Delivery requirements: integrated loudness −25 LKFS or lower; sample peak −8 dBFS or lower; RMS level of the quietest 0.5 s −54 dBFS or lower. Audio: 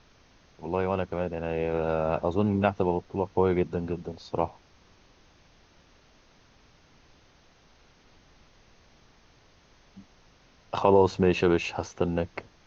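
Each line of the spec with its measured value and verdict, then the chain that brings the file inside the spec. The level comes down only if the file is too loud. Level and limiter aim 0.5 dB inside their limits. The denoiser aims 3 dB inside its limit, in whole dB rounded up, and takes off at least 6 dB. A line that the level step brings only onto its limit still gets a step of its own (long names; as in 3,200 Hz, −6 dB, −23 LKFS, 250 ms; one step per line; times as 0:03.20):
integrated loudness −27.0 LKFS: in spec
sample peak −6.0 dBFS: out of spec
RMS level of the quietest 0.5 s −59 dBFS: in spec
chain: brickwall limiter −8.5 dBFS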